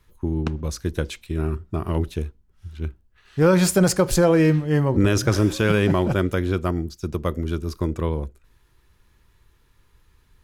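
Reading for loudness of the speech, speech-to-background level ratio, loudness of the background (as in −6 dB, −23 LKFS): −22.0 LKFS, 16.0 dB, −38.0 LKFS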